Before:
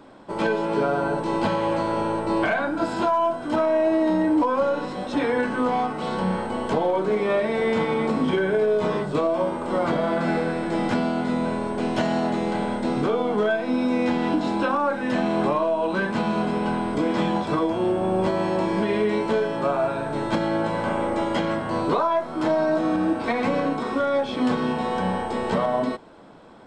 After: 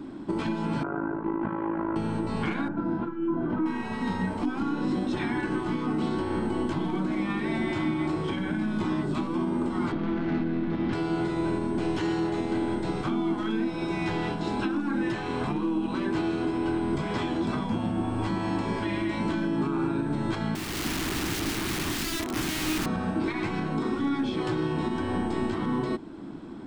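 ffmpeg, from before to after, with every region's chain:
-filter_complex "[0:a]asettb=1/sr,asplit=3[s0][s1][s2];[s0]atrim=end=0.834[s3];[s1]atrim=start=0.83:end=1.96,asetpts=PTS-STARTPTS,afade=t=in:d=0.004:c=qsin,afade=t=out:st=1.126:d=0.004:c=qsin,lowpass=f=1500:w=0.5412,lowpass=f=1500:w=1.3066,tiltshelf=f=900:g=-9,tremolo=f=53:d=0.824[s4];[s2]atrim=start=1.956[s5];[s3][s4]acrossfade=d=0.004:c1=hsin:c2=qsin[s6];[s6][s5]acrossfade=d=0.004:c1=qsin:c2=hsin,asettb=1/sr,asplit=3[s7][s8][s9];[s7]atrim=end=2.684[s10];[s8]atrim=start=2.68:end=3.66,asetpts=PTS-STARTPTS,afade=t=in:d=0.004:c=qsin,afade=t=out:st=0.976:d=0.004:c=qsin,lowpass=1400,aecho=1:1:5.9:0.36,atrim=end_sample=43218,acompressor=threshold=0.0562:ratio=2:attack=3.2:release=140:knee=1:detection=peak[s11];[s9]atrim=start=3.656[s12];[s10][s11]acrossfade=d=0.004:c1=hsin:c2=qsin[s13];[s13][s12]acrossfade=d=0.004:c1=qsin:c2=hsin,asettb=1/sr,asplit=3[s14][s15][s16];[s14]atrim=end=9.924[s17];[s15]atrim=start=9.92:end=10.93,asetpts=PTS-STARTPTS,afade=t=in:d=0.004:c=qsin,afade=t=out:st=1.006:d=0.004:c=qsin,lowpass=f=4000:w=0.5412,lowpass=f=4000:w=1.3066,aeval=exprs='(tanh(12.6*val(0)+0.65)-tanh(0.65))/12.6':c=same[s18];[s16]atrim=start=10.926[s19];[s17][s18]acrossfade=d=0.004:c1=hsin:c2=qsin[s20];[s20][s19]acrossfade=d=0.004:c1=qsin:c2=hsin,asettb=1/sr,asplit=3[s21][s22][s23];[s21]atrim=end=20.554[s24];[s22]atrim=start=20.55:end=22.86,asetpts=PTS-STARTPTS,afade=t=in:d=0.004:c=qsin,afade=t=out:st=2.306:d=0.004:c=qsin,acompressor=threshold=0.0708:ratio=6:attack=3.2:release=140:knee=1:detection=peak,highpass=310,aeval=exprs='(mod(23.7*val(0)+1,2)-1)/23.7':c=same[s25];[s23]atrim=start=22.856[s26];[s24][s25]acrossfade=d=0.004:c1=hsin:c2=qsin[s27];[s27][s26]acrossfade=d=0.004:c1=qsin:c2=hsin,afftfilt=real='re*lt(hypot(re,im),0.282)':imag='im*lt(hypot(re,im),0.282)':win_size=1024:overlap=0.75,lowshelf=f=410:t=q:w=3:g=7.5,alimiter=limit=0.112:level=0:latency=1:release=352"

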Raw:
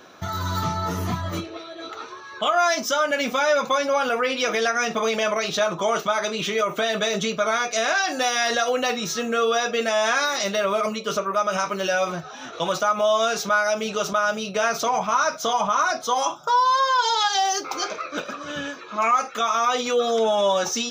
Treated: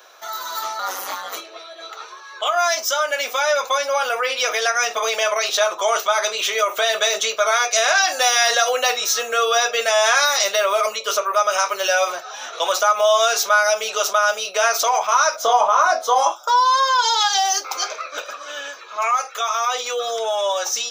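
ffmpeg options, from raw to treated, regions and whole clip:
-filter_complex "[0:a]asettb=1/sr,asplit=3[s0][s1][s2];[s0]atrim=end=0.794[s3];[s1]atrim=start=0.79:end=1.36,asetpts=PTS-STARTPTS,afade=t=in:d=0.004:c=qsin,afade=t=out:st=0.566:d=0.004:c=qsin,equalizer=f=340:t=o:w=1.2:g=-5,acontrast=43,aeval=exprs='val(0)*sin(2*PI*95*n/s)':c=same[s4];[s2]atrim=start=1.356[s5];[s3][s4]acrossfade=d=0.004:c1=hsin:c2=qsin[s6];[s6][s5]acrossfade=d=0.004:c1=qsin:c2=hsin,asettb=1/sr,asplit=3[s7][s8][s9];[s7]atrim=end=15.364[s10];[s8]atrim=start=15.36:end=16.32,asetpts=PTS-STARTPTS,afade=t=in:d=0.004:c=qsin,afade=t=out:st=0.956:d=0.004:c=qsin,tiltshelf=f=1300:g=7,asplit=2[s11][s12];[s12]adelay=23,volume=0.398[s13];[s11][s13]amix=inputs=2:normalize=0,atrim=end_sample=42336[s14];[s9]atrim=start=16.316[s15];[s10][s14]acrossfade=d=0.004:c1=hsin:c2=qsin[s16];[s16][s15]acrossfade=d=0.004:c1=qsin:c2=hsin,highpass=f=500:w=0.5412,highpass=f=500:w=1.3066,highshelf=f=6400:g=10.5,dynaudnorm=f=540:g=17:m=2"

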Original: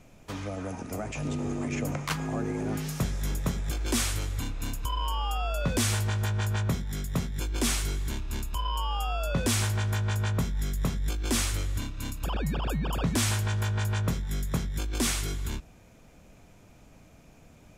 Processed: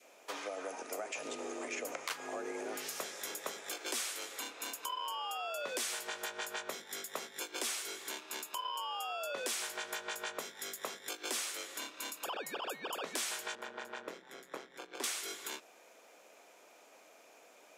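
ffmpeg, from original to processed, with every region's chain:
-filter_complex "[0:a]asettb=1/sr,asplit=3[s0][s1][s2];[s0]atrim=end=13.554[s3];[s1]atrim=start=13.55:end=15.04,asetpts=PTS-STARTPTS,afade=t=in:d=0.004:c=qsin,afade=t=out:st=1.486:d=0.004:c=qsin,tremolo=f=130:d=0.667,asubboost=boost=10.5:cutoff=74,lowpass=f=1400:p=1[s4];[s2]atrim=start=15.036[s5];[s3][s4]acrossfade=d=0.004:c1=hsin:c2=qsin[s6];[s6][s5]acrossfade=d=0.004:c1=qsin:c2=hsin,adynamicequalizer=threshold=0.00398:dfrequency=920:dqfactor=1.2:tfrequency=920:tqfactor=1.2:attack=5:release=100:ratio=0.375:range=2:mode=cutabove:tftype=bell,highpass=f=420:w=0.5412,highpass=f=420:w=1.3066,acompressor=threshold=0.0126:ratio=3,volume=1.12"

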